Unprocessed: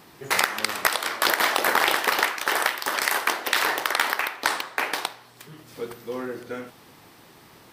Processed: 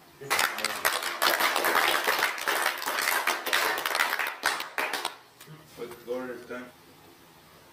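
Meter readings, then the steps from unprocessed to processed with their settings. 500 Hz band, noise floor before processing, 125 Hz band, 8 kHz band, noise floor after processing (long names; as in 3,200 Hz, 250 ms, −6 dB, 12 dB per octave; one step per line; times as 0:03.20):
−3.0 dB, −52 dBFS, −4.5 dB, −3.0 dB, −55 dBFS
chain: low-shelf EQ 86 Hz −5.5 dB
multi-voice chorus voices 6, 0.26 Hz, delay 13 ms, depth 1.7 ms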